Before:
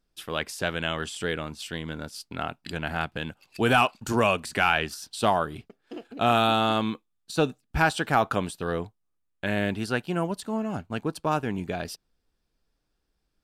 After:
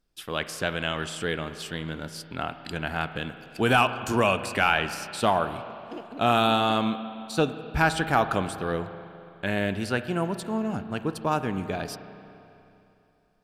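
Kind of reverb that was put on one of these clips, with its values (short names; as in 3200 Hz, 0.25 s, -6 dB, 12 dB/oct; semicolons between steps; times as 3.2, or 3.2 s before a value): spring tank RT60 2.9 s, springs 31/41 ms, chirp 25 ms, DRR 10.5 dB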